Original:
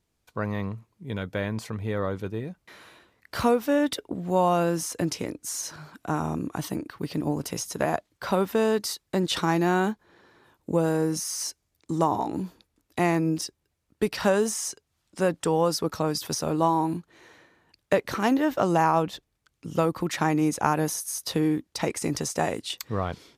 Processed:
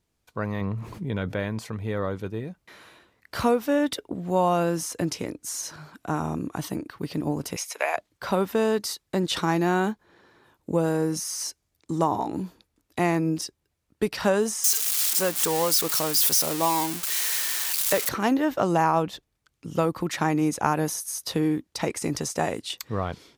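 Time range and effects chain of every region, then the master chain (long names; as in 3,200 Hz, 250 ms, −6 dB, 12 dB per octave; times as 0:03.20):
0:00.61–0:01.40: high-shelf EQ 4,200 Hz −8.5 dB + envelope flattener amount 70%
0:07.56–0:07.97: high-pass filter 540 Hz 24 dB per octave + parametric band 2,300 Hz +14.5 dB 0.41 octaves
0:14.64–0:18.09: spike at every zero crossing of −15.5 dBFS + low-shelf EQ 290 Hz −8.5 dB
whole clip: no processing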